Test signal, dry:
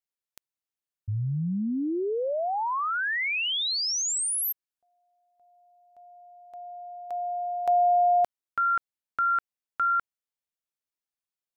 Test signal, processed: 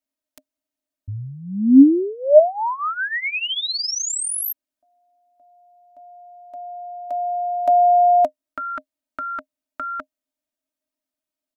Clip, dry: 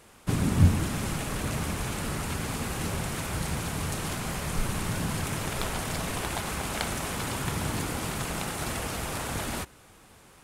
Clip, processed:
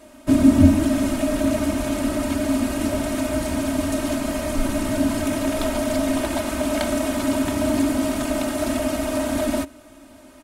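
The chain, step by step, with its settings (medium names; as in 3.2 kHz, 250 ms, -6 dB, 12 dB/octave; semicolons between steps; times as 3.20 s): comb 3.2 ms, depth 73%; small resonant body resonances 270/610 Hz, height 18 dB, ringing for 85 ms; trim +1 dB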